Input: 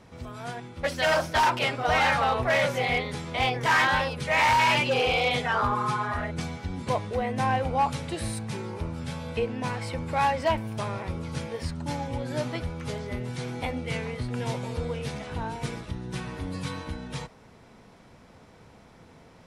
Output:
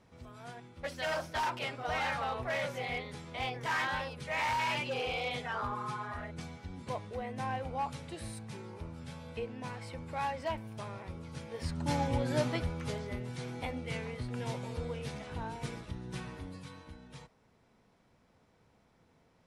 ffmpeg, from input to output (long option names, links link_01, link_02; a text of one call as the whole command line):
ffmpeg -i in.wav -af "volume=1dB,afade=type=in:start_time=11.46:duration=0.56:silence=0.251189,afade=type=out:start_time=12.02:duration=1.22:silence=0.398107,afade=type=out:start_time=16.23:duration=0.42:silence=0.398107" out.wav